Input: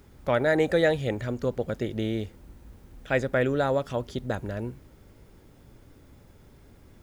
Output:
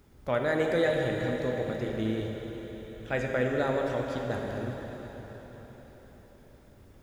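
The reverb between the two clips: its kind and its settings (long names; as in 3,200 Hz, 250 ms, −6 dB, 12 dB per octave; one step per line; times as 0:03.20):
dense smooth reverb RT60 4.8 s, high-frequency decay 0.95×, DRR 0 dB
level −5.5 dB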